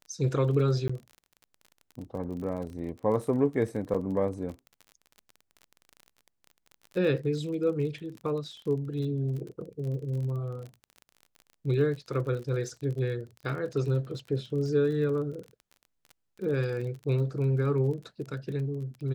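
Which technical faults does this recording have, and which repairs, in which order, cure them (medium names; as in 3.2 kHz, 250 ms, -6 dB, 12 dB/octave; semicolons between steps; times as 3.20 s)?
crackle 31 per s -37 dBFS
0.88–0.90 s: dropout 15 ms
3.94–3.95 s: dropout 6.2 ms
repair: de-click; interpolate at 0.88 s, 15 ms; interpolate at 3.94 s, 6.2 ms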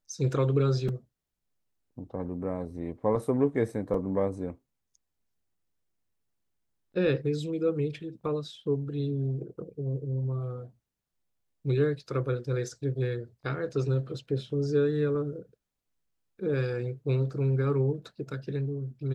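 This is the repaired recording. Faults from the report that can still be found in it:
nothing left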